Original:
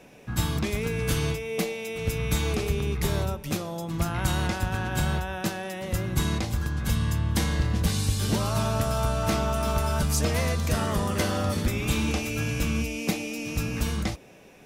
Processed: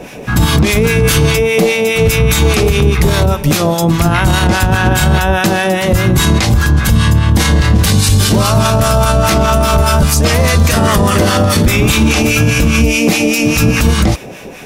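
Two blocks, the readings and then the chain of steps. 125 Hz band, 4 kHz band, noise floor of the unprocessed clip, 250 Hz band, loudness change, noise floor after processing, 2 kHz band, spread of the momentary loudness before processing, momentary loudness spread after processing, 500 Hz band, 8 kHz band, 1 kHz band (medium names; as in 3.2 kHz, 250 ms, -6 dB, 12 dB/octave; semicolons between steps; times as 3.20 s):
+16.0 dB, +17.0 dB, -50 dBFS, +16.5 dB, +16.5 dB, -27 dBFS, +18.0 dB, 5 LU, 2 LU, +17.0 dB, +16.5 dB, +16.5 dB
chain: harmonic tremolo 4.9 Hz, depth 70%, crossover 920 Hz; loudness maximiser +25.5 dB; trim -1 dB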